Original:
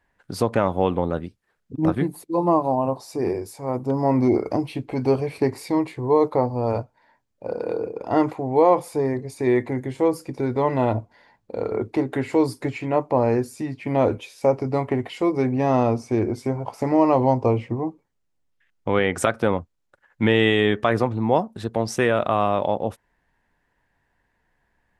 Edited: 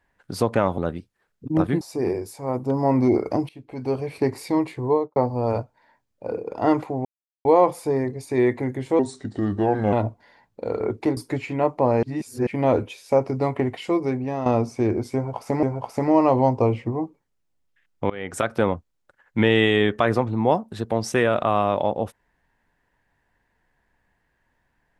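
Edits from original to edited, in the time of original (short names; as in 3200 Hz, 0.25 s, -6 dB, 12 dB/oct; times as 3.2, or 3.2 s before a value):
0.78–1.06 cut
2.09–3.01 cut
4.69–5.53 fade in, from -19 dB
6.05–6.36 studio fade out
7.52–7.81 cut
8.54 insert silence 0.40 s
10.08–10.84 speed 81%
12.08–12.49 cut
13.35–13.79 reverse
15.18–15.78 fade out, to -10 dB
16.47–16.95 loop, 2 plays
18.94–19.43 fade in, from -23 dB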